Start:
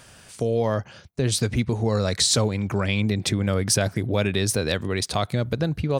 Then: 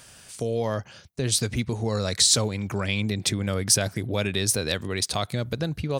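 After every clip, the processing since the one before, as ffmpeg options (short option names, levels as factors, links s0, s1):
-af "highshelf=f=3000:g=7.5,volume=0.631"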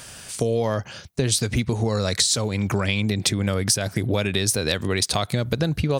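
-af "acompressor=threshold=0.0501:ratio=10,volume=2.66"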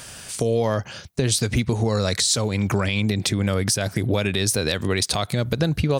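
-af "alimiter=level_in=3.16:limit=0.891:release=50:level=0:latency=1,volume=0.376"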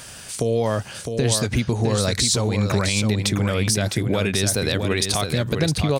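-af "aecho=1:1:659:0.501"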